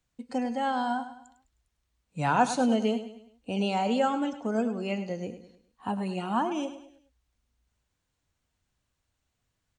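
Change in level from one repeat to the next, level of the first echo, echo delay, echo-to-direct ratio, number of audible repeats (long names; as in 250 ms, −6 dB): −7.5 dB, −12.0 dB, 103 ms, −11.0 dB, 4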